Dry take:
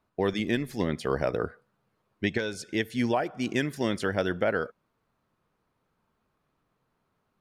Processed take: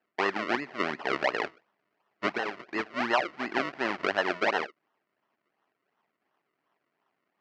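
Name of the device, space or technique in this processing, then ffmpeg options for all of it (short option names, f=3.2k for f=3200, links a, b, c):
circuit-bent sampling toy: -af "acrusher=samples=37:mix=1:aa=0.000001:lfo=1:lforange=37:lforate=2.8,highpass=470,equalizer=f=500:t=q:w=4:g=-9,equalizer=f=1.9k:t=q:w=4:g=4,equalizer=f=3.6k:t=q:w=4:g=-9,lowpass=f=4.1k:w=0.5412,lowpass=f=4.1k:w=1.3066,volume=4dB"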